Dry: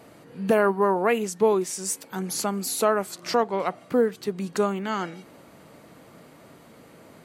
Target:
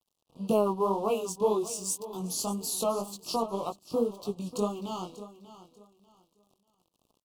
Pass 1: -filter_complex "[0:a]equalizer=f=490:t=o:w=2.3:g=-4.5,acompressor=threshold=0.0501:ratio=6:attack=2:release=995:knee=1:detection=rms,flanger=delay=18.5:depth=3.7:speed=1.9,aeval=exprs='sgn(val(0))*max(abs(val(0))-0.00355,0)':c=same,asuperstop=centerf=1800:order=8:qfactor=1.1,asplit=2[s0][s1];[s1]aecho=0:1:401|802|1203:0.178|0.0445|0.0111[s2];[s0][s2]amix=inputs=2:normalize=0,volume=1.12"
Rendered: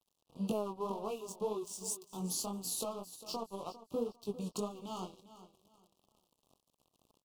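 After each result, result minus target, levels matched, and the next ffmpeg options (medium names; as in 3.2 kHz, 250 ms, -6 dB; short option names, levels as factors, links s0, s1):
compression: peak gain reduction +11.5 dB; echo 189 ms early
-filter_complex "[0:a]equalizer=f=490:t=o:w=2.3:g=-4.5,flanger=delay=18.5:depth=3.7:speed=1.9,aeval=exprs='sgn(val(0))*max(abs(val(0))-0.00355,0)':c=same,asuperstop=centerf=1800:order=8:qfactor=1.1,asplit=2[s0][s1];[s1]aecho=0:1:401|802|1203:0.178|0.0445|0.0111[s2];[s0][s2]amix=inputs=2:normalize=0,volume=1.12"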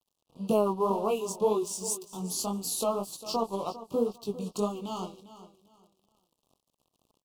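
echo 189 ms early
-filter_complex "[0:a]equalizer=f=490:t=o:w=2.3:g=-4.5,flanger=delay=18.5:depth=3.7:speed=1.9,aeval=exprs='sgn(val(0))*max(abs(val(0))-0.00355,0)':c=same,asuperstop=centerf=1800:order=8:qfactor=1.1,asplit=2[s0][s1];[s1]aecho=0:1:590|1180|1770:0.178|0.0445|0.0111[s2];[s0][s2]amix=inputs=2:normalize=0,volume=1.12"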